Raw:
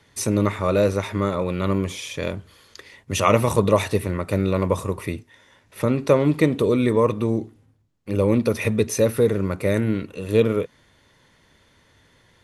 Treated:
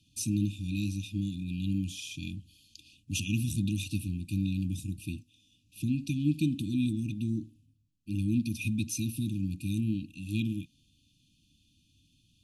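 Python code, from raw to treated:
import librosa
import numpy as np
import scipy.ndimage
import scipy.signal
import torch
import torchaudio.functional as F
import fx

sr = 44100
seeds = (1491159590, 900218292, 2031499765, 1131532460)

y = fx.brickwall_bandstop(x, sr, low_hz=330.0, high_hz=2400.0)
y = y * librosa.db_to_amplitude(-7.0)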